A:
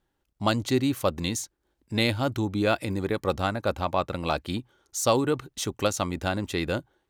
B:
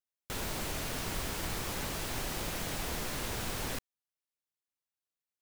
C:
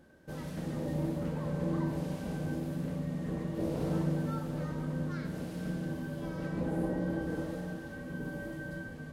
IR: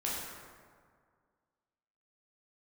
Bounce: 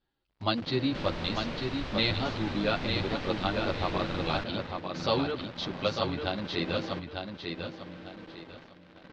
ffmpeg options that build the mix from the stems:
-filter_complex "[0:a]lowpass=f=4600:t=q:w=3.5,asplit=2[s0][s1];[s1]adelay=10.4,afreqshift=-1.6[s2];[s0][s2]amix=inputs=2:normalize=1,volume=0.708,asplit=3[s3][s4][s5];[s4]volume=0.562[s6];[1:a]adelay=650,volume=0.891[s7];[2:a]highpass=f=170:w=0.5412,highpass=f=170:w=1.3066,acrusher=bits=5:mix=0:aa=0.000001,volume=0.562,asplit=2[s8][s9];[s9]volume=0.422[s10];[s5]apad=whole_len=402602[s11];[s8][s11]sidechaingate=range=0.0224:threshold=0.00126:ratio=16:detection=peak[s12];[s6][s10]amix=inputs=2:normalize=0,aecho=0:1:898|1796|2694|3592:1|0.28|0.0784|0.022[s13];[s3][s7][s12][s13]amix=inputs=4:normalize=0,lowpass=f=4200:w=0.5412,lowpass=f=4200:w=1.3066"

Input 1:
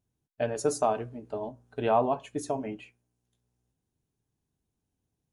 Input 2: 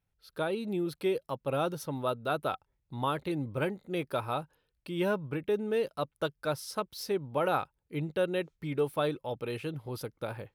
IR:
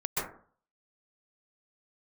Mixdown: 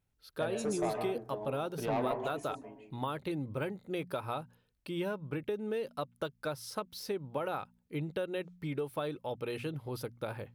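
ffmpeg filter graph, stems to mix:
-filter_complex "[0:a]asoftclip=type=tanh:threshold=0.0841,volume=0.376,afade=t=out:st=2.13:d=0.4:silence=0.334965,asplit=2[s0][s1];[s1]volume=0.282[s2];[1:a]deesser=0.9,bandreject=f=59.36:t=h:w=4,bandreject=f=118.72:t=h:w=4,bandreject=f=178.08:t=h:w=4,bandreject=f=237.44:t=h:w=4,acompressor=threshold=0.0251:ratio=6,volume=1[s3];[2:a]atrim=start_sample=2205[s4];[s2][s4]afir=irnorm=-1:irlink=0[s5];[s0][s3][s5]amix=inputs=3:normalize=0"

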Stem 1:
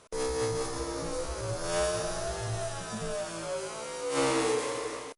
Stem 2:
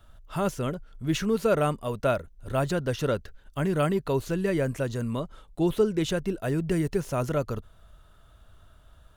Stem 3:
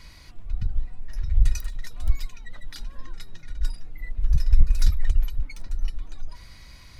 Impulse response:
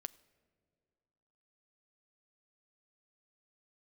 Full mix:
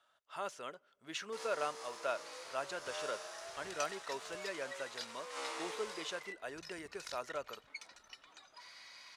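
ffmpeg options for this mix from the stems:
-filter_complex "[0:a]acrusher=bits=5:mix=0:aa=0.5,adelay=1200,volume=0.282[s0];[1:a]volume=0.282,asplit=2[s1][s2];[s2]volume=0.596[s3];[2:a]asoftclip=type=tanh:threshold=0.168,adelay=2250,volume=0.794,asplit=2[s4][s5];[s5]volume=0.0794[s6];[3:a]atrim=start_sample=2205[s7];[s3][s7]afir=irnorm=-1:irlink=0[s8];[s6]aecho=0:1:90:1[s9];[s0][s1][s4][s8][s9]amix=inputs=5:normalize=0,highpass=720,lowpass=7300"

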